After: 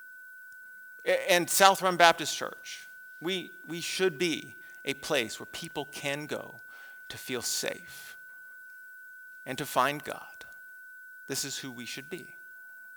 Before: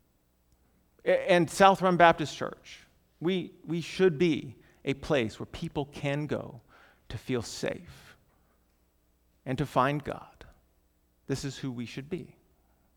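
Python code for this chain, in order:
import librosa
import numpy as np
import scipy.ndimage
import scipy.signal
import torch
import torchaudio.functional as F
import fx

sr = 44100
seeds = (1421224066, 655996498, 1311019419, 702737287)

y = fx.tracing_dist(x, sr, depth_ms=0.046)
y = y + 10.0 ** (-47.0 / 20.0) * np.sin(2.0 * np.pi * 1500.0 * np.arange(len(y)) / sr)
y = fx.riaa(y, sr, side='recording')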